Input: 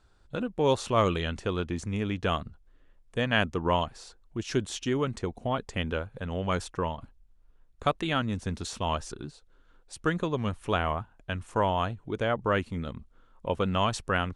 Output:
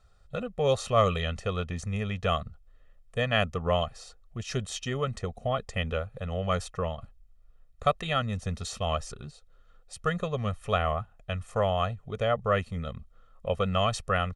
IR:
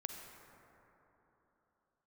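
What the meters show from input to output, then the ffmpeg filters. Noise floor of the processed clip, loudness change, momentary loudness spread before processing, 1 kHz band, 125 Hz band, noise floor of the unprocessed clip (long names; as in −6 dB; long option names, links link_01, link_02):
−58 dBFS, 0.0 dB, 11 LU, −0.5 dB, +1.5 dB, −61 dBFS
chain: -af "aecho=1:1:1.6:0.9,volume=-2.5dB"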